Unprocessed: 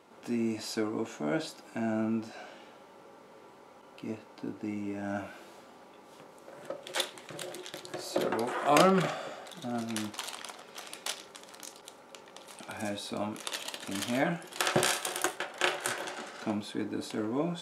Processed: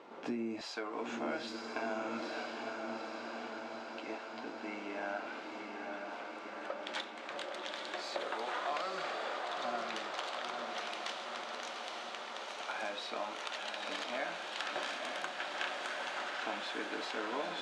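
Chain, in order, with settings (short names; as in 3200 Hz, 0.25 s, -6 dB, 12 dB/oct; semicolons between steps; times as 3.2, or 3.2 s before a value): HPF 240 Hz 12 dB/oct, from 0.61 s 700 Hz; compressor 10:1, threshold -40 dBFS, peak gain reduction 19.5 dB; air absorption 160 m; diffused feedback echo 0.917 s, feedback 68%, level -3.5 dB; gain +6 dB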